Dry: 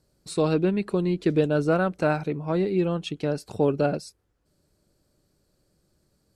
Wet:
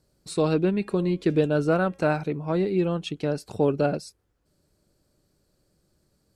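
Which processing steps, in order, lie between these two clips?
0.71–2.16 s: de-hum 272.2 Hz, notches 13

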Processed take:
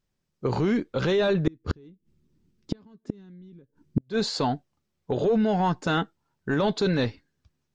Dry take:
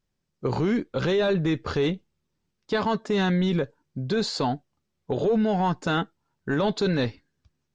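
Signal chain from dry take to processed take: 1.47–4.01 s: resonant low shelf 450 Hz +11 dB, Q 1.5; inverted gate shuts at -11 dBFS, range -36 dB

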